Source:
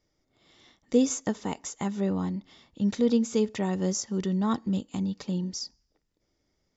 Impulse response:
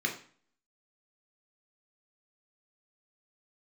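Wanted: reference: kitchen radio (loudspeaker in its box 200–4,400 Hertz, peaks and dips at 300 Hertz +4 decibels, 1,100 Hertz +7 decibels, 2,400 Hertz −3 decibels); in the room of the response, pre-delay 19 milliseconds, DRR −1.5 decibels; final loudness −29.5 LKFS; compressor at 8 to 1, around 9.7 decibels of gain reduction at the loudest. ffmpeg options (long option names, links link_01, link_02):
-filter_complex "[0:a]acompressor=threshold=-27dB:ratio=8,asplit=2[link_01][link_02];[1:a]atrim=start_sample=2205,adelay=19[link_03];[link_02][link_03]afir=irnorm=-1:irlink=0,volume=-5.5dB[link_04];[link_01][link_04]amix=inputs=2:normalize=0,highpass=200,equalizer=frequency=300:width_type=q:width=4:gain=4,equalizer=frequency=1100:width_type=q:width=4:gain=7,equalizer=frequency=2400:width_type=q:width=4:gain=-3,lowpass=frequency=4400:width=0.5412,lowpass=frequency=4400:width=1.3066,volume=2dB"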